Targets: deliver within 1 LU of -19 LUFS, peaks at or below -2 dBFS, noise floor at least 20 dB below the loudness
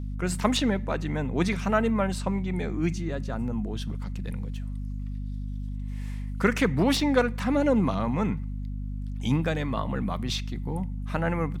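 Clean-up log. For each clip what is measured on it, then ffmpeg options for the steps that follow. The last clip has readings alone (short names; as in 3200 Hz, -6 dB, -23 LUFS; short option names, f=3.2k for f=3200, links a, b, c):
hum 50 Hz; harmonics up to 250 Hz; hum level -30 dBFS; loudness -28.0 LUFS; peak -8.5 dBFS; loudness target -19.0 LUFS
-> -af "bandreject=f=50:t=h:w=6,bandreject=f=100:t=h:w=6,bandreject=f=150:t=h:w=6,bandreject=f=200:t=h:w=6,bandreject=f=250:t=h:w=6"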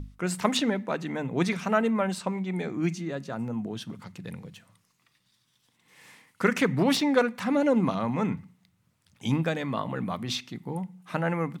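hum none; loudness -28.0 LUFS; peak -8.5 dBFS; loudness target -19.0 LUFS
-> -af "volume=9dB,alimiter=limit=-2dB:level=0:latency=1"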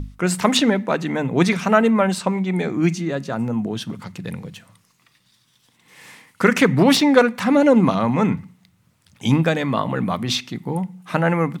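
loudness -19.0 LUFS; peak -2.0 dBFS; noise floor -62 dBFS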